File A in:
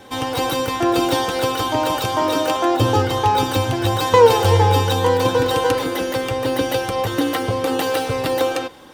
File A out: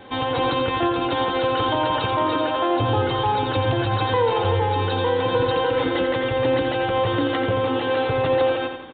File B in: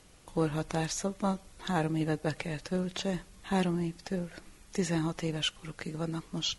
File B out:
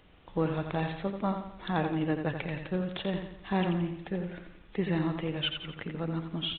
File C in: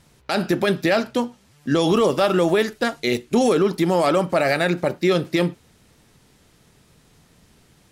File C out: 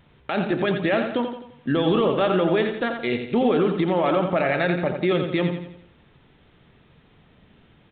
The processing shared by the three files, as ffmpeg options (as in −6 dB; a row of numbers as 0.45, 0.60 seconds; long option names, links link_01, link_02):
-af "alimiter=limit=-13dB:level=0:latency=1:release=68,aecho=1:1:86|172|258|344|430:0.447|0.201|0.0905|0.0407|0.0183,aresample=8000,aresample=44100"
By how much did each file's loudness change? −3.0, +0.5, −2.0 LU